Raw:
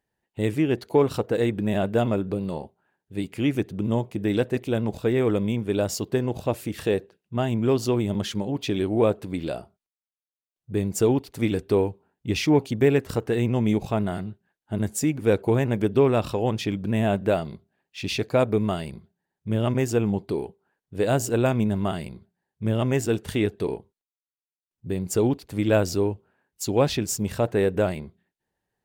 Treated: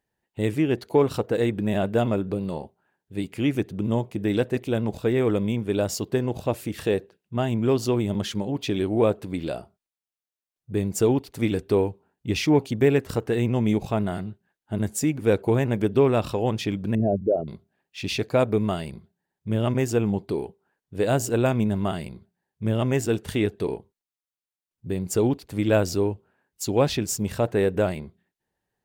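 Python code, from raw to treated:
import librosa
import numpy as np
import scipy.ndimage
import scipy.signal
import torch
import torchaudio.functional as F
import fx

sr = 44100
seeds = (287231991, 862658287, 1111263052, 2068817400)

y = fx.envelope_sharpen(x, sr, power=3.0, at=(16.95, 17.48))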